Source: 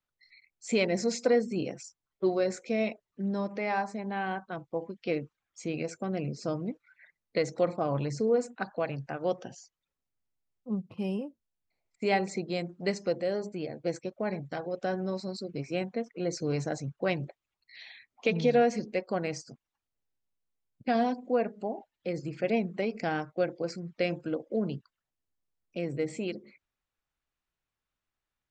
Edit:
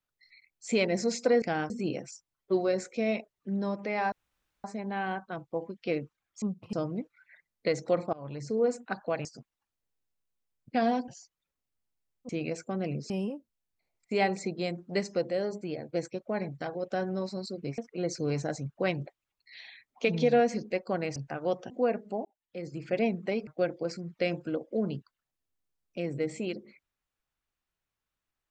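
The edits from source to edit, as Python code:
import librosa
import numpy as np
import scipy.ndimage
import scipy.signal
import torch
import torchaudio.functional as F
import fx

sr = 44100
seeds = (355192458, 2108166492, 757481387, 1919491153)

y = fx.edit(x, sr, fx.insert_room_tone(at_s=3.84, length_s=0.52),
    fx.swap(start_s=5.62, length_s=0.81, other_s=10.7, other_length_s=0.31),
    fx.fade_in_from(start_s=7.83, length_s=0.55, floor_db=-22.5),
    fx.swap(start_s=8.95, length_s=0.54, other_s=19.38, other_length_s=1.83),
    fx.cut(start_s=15.69, length_s=0.31),
    fx.fade_in_span(start_s=21.76, length_s=0.67),
    fx.move(start_s=22.98, length_s=0.28, to_s=1.42), tone=tone)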